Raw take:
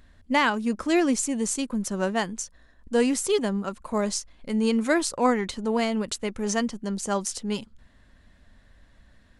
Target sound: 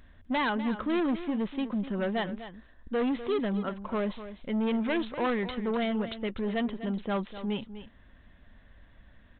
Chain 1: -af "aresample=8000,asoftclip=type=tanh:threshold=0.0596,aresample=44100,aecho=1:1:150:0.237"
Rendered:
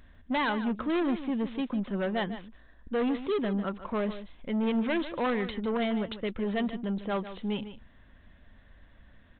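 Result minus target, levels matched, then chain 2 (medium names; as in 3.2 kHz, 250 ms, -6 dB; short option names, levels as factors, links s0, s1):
echo 99 ms early
-af "aresample=8000,asoftclip=type=tanh:threshold=0.0596,aresample=44100,aecho=1:1:249:0.237"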